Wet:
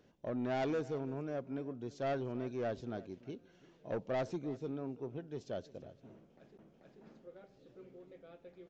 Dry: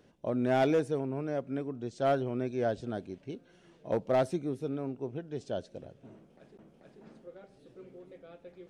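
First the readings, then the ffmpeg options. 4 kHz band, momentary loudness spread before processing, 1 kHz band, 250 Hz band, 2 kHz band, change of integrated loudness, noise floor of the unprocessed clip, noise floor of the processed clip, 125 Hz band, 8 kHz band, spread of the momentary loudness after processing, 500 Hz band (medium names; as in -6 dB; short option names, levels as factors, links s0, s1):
-6.5 dB, 23 LU, -8.0 dB, -6.5 dB, -6.5 dB, -7.5 dB, -62 dBFS, -66 dBFS, -6.5 dB, no reading, 20 LU, -7.5 dB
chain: -filter_complex "[0:a]asoftclip=type=tanh:threshold=0.0501,asplit=2[s0][s1];[s1]aecho=0:1:337:0.106[s2];[s0][s2]amix=inputs=2:normalize=0,aresample=16000,aresample=44100,volume=0.596"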